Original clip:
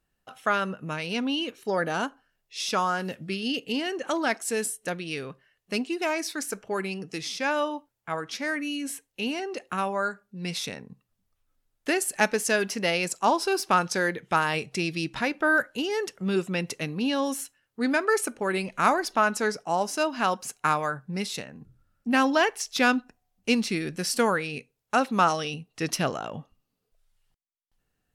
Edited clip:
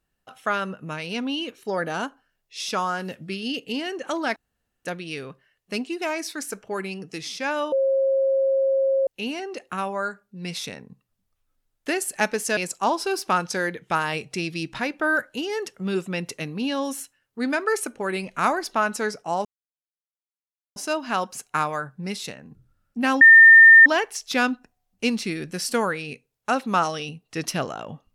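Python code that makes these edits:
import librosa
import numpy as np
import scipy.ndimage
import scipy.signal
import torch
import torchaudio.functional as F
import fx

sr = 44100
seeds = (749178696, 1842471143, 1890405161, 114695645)

y = fx.edit(x, sr, fx.room_tone_fill(start_s=4.36, length_s=0.49),
    fx.bleep(start_s=7.72, length_s=1.35, hz=539.0, db=-17.5),
    fx.cut(start_s=12.57, length_s=0.41),
    fx.insert_silence(at_s=19.86, length_s=1.31),
    fx.insert_tone(at_s=22.31, length_s=0.65, hz=1810.0, db=-6.0), tone=tone)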